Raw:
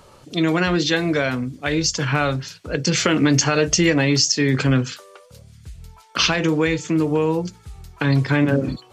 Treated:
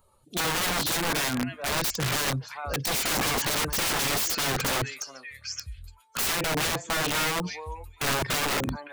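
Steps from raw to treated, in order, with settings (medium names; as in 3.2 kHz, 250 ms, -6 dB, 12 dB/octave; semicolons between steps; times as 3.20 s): expander on every frequency bin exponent 1.5; repeats whose band climbs or falls 426 ms, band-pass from 890 Hz, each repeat 1.4 oct, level -9 dB; integer overflow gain 21.5 dB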